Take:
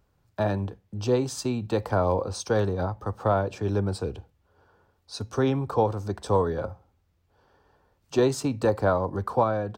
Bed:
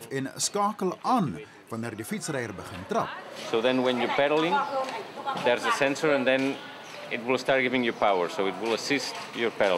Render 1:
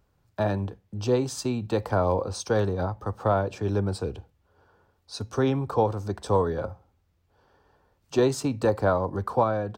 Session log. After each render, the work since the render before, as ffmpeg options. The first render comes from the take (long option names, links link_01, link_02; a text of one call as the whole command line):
ffmpeg -i in.wav -af anull out.wav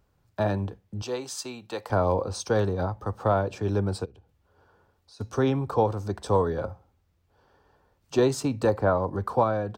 ffmpeg -i in.wav -filter_complex "[0:a]asettb=1/sr,asplit=3[link_01][link_02][link_03];[link_01]atrim=end=1.024[link_04];[link_02]atrim=start=1.02:end=1.9,asetpts=PTS-STARTPTS,afade=type=in:duration=0.004:curve=qsin,afade=type=out:start_time=0.876:duration=0.004:curve=qsin,highpass=frequency=1000:poles=1[link_05];[link_03]atrim=start=1.896[link_06];[link_04][link_05]acrossfade=duration=0.004:curve1=hsin:curve2=qsin[link_07];[link_07][link_06]acrossfade=duration=0.004:curve1=qsin:curve2=hsin,asplit=3[link_08][link_09][link_10];[link_08]afade=type=out:start_time=4.04:duration=0.02[link_11];[link_09]acompressor=threshold=-54dB:ratio=3:attack=3.2:release=140:knee=1:detection=peak,afade=type=in:start_time=4.04:duration=0.02,afade=type=out:start_time=5.19:duration=0.02[link_12];[link_10]afade=type=in:start_time=5.19:duration=0.02[link_13];[link_11][link_12][link_13]amix=inputs=3:normalize=0,asettb=1/sr,asplit=3[link_14][link_15][link_16];[link_14]atrim=end=8.754[link_17];[link_15]atrim=start=8.75:end=9.23,asetpts=PTS-STARTPTS,afade=type=in:duration=0.004:curve=qsin,afade=type=out:start_time=0.476:duration=0.004:curve=qsin,acrossover=split=2700[link_18][link_19];[link_19]acompressor=threshold=-59dB:ratio=4:attack=1:release=60[link_20];[link_18][link_20]amix=inputs=2:normalize=0[link_21];[link_16]atrim=start=9.226[link_22];[link_17][link_21]acrossfade=duration=0.004:curve1=hsin:curve2=qsin[link_23];[link_23][link_22]acrossfade=duration=0.004:curve1=qsin:curve2=hsin" out.wav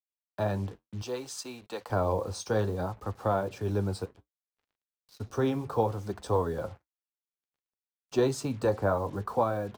ffmpeg -i in.wav -af "acrusher=bits=7:mix=0:aa=0.5,flanger=delay=2.4:depth=9.2:regen=-61:speed=0.63:shape=triangular" out.wav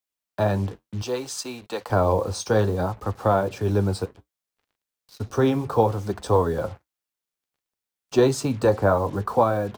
ffmpeg -i in.wav -af "volume=7.5dB" out.wav